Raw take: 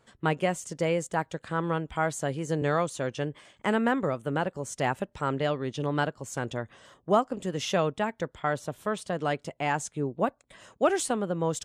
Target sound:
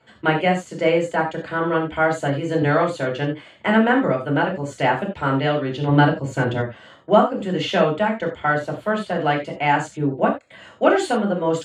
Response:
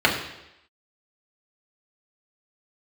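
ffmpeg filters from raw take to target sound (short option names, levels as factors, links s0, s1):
-filter_complex "[0:a]asettb=1/sr,asplit=3[s0][s1][s2];[s0]atrim=end=5.884[s3];[s1]atrim=start=5.88:end=6.6,asetpts=PTS-STARTPTS,afade=t=in:d=0.004:c=qsin,afade=t=out:st=0.716:d=0.004:c=qsin,lowshelf=f=300:g=9.5[s4];[s2]atrim=start=6.596[s5];[s3][s4]acrossfade=d=0.004:c1=hsin:c2=qsin[s6];[s6][s5]acrossfade=d=0.004:c1=qsin:c2=hsin[s7];[1:a]atrim=start_sample=2205,atrim=end_sample=4410[s8];[s7][s8]afir=irnorm=-1:irlink=0,volume=0.299"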